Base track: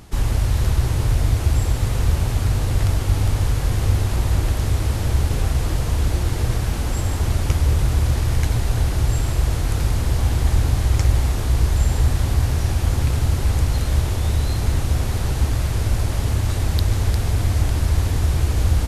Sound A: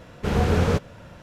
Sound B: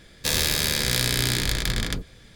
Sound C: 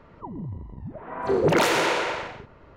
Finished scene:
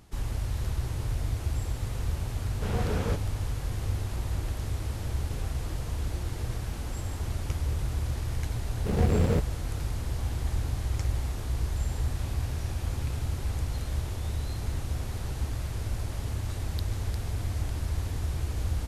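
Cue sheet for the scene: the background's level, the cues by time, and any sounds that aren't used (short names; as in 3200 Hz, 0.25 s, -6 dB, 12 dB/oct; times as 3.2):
base track -12 dB
2.38 add A -9.5 dB
8.62 add A -3 dB + median filter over 41 samples
11.95 add B -14.5 dB + vowel filter a
not used: C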